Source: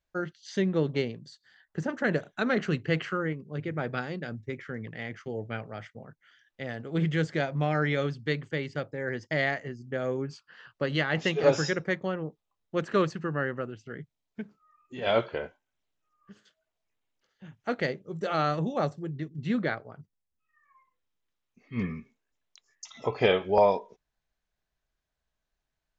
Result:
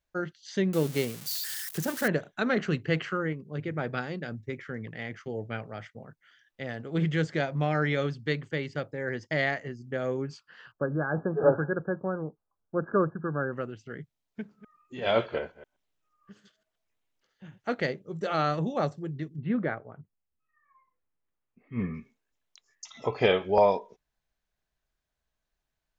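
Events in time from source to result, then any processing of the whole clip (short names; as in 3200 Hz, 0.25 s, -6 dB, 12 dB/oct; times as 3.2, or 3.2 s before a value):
0.73–2.08 switching spikes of -25.5 dBFS
10.72–13.53 brick-wall FIR low-pass 1700 Hz
14.4–17.62 reverse delay 0.124 s, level -13 dB
19.36–21.94 Gaussian blur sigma 3.5 samples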